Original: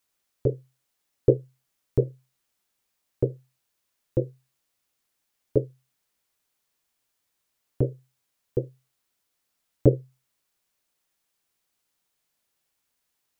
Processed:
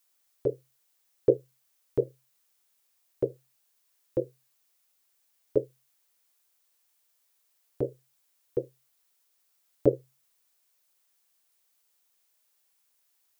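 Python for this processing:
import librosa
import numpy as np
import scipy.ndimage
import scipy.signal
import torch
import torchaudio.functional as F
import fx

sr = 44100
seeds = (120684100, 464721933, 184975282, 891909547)

y = fx.bass_treble(x, sr, bass_db=-14, treble_db=3)
y = fx.dmg_noise_colour(y, sr, seeds[0], colour='violet', level_db=-74.0)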